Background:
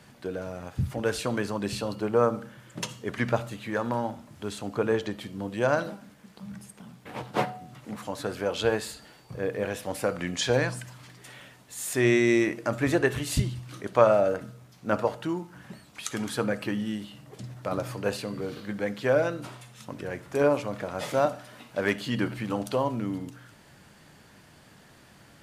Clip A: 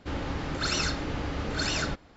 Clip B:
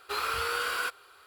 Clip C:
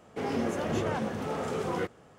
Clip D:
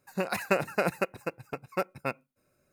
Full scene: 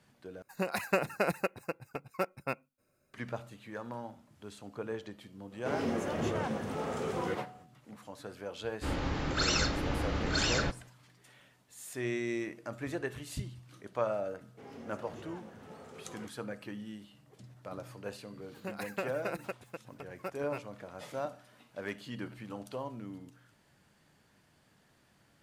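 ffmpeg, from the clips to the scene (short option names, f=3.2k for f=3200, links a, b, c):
-filter_complex "[4:a]asplit=2[a][b];[3:a]asplit=2[c][d];[0:a]volume=-13dB,asplit=2[e][f];[e]atrim=end=0.424[g];[a]atrim=end=2.72,asetpts=PTS-STARTPTS,volume=-3dB[h];[f]atrim=start=3.136[i];[c]atrim=end=2.18,asetpts=PTS-STARTPTS,volume=-3dB,afade=t=in:d=0.05,afade=t=out:st=2.13:d=0.05,adelay=242109S[j];[1:a]atrim=end=2.16,asetpts=PTS-STARTPTS,volume=-1dB,afade=t=in:d=0.1,afade=t=out:st=2.06:d=0.1,adelay=8760[k];[d]atrim=end=2.18,asetpts=PTS-STARTPTS,volume=-18dB,afade=t=in:d=0.004:c=hsin,afade=t=out:st=2.176:d=0.004:c=hsin,adelay=14410[l];[b]atrim=end=2.72,asetpts=PTS-STARTPTS,volume=-10.5dB,afade=t=in:d=0.004:c=hsin,afade=t=out:st=2.716:d=0.004:c=hsin,adelay=18470[m];[g][h]acrossfade=d=0.004:c1=hsin:c2=hsin[n];[n][i]acrossfade=d=0.004:c1=hsin:c2=hsin[o];[o][j][k][l][m]amix=inputs=5:normalize=0"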